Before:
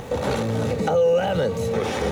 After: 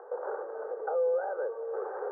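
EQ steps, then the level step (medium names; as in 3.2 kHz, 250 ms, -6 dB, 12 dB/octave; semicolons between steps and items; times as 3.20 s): Chebyshev band-pass 370–1600 Hz, order 5; distance through air 180 m; -9.0 dB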